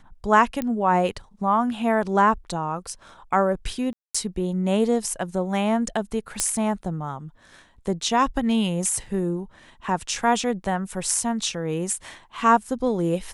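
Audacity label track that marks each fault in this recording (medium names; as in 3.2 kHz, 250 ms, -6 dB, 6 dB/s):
0.620000	0.620000	pop -14 dBFS
3.930000	4.140000	dropout 215 ms
6.400000	6.400000	pop -6 dBFS
9.060000	9.060000	dropout 2.9 ms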